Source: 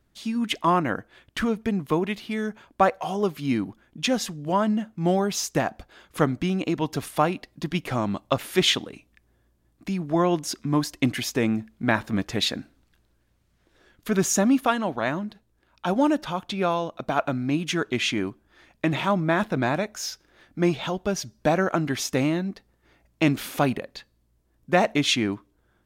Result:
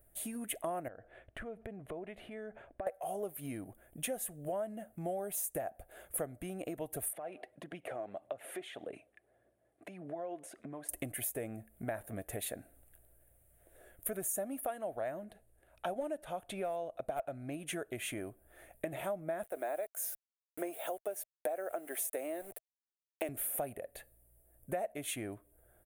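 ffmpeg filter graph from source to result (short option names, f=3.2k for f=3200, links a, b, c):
-filter_complex "[0:a]asettb=1/sr,asplit=3[a][b][c];[a]atrim=end=0.884[d];[b]atrim=start=0.88:end=2.87,asetpts=PTS-STARTPTS,afade=t=in:d=0.004:c=qsin,afade=t=out:st=1.986:d=0.004:c=qsin,lowpass=2.9k,acompressor=threshold=-37dB:ratio=6:attack=3.2:release=140:knee=1:detection=peak[e];[c]atrim=start=2.866[f];[d][e]acrossfade=d=0.004:c1=hsin:c2=qsin[g];[g][f]acrossfade=d=0.004:c1=qsin:c2=hsin,asettb=1/sr,asplit=3[h][i][j];[h]atrim=end=7.134[k];[i]atrim=start=7.13:end=10.89,asetpts=PTS-STARTPTS,afade=t=in:d=0.004:c=qsin,afade=t=out:st=3.756:d=0.004:c=qsin,acompressor=threshold=-36dB:ratio=5:attack=3.2:release=140:knee=1:detection=peak,aphaser=in_gain=1:out_gain=1:delay=3:decay=0.39:speed=1.7:type=triangular,highpass=220,lowpass=3.6k[l];[j]atrim=start=10.886[m];[k][l]acrossfade=d=0.004:c1=hsin:c2=qsin[n];[n][m]acrossfade=d=0.004:c1=qsin:c2=hsin,asettb=1/sr,asplit=3[o][p][q];[o]atrim=end=15.244[r];[p]atrim=start=15.24:end=17.73,asetpts=PTS-STARTPTS,afade=t=in:d=0.004:c=qsin,afade=t=out:st=2.486:d=0.004:c=qsin,lowpass=4.5k,aemphasis=mode=production:type=50fm,aeval=exprs='clip(val(0),-1,0.168)':c=same[s];[q]atrim=start=17.726[t];[r][s]acrossfade=d=0.004:c1=hsin:c2=qsin[u];[u][t]acrossfade=d=0.004:c1=qsin:c2=hsin,asettb=1/sr,asplit=3[v][w][x];[v]atrim=end=19.444[y];[w]atrim=start=19.44:end=23.29,asetpts=PTS-STARTPTS,afade=t=in:d=0.004:c=qsin,afade=t=out:st=3.846:d=0.004:c=qsin,highpass=f=310:w=0.5412,highpass=f=310:w=1.3066,aeval=exprs='val(0)*gte(abs(val(0)),0.00708)':c=same[z];[x]atrim=start=23.286[aa];[y][z]acrossfade=d=0.004:c1=hsin:c2=qsin[ab];[ab][aa]acrossfade=d=0.004:c1=qsin:c2=hsin,firequalizer=gain_entry='entry(110,0);entry(150,-7);entry(230,-10);entry(650,5);entry(960,-15);entry(1700,-8);entry(5000,-24);entry(9300,11)':delay=0.05:min_phase=1,acompressor=threshold=-40dB:ratio=5,equalizer=f=96:w=0.34:g=-6.5,volume=4.5dB"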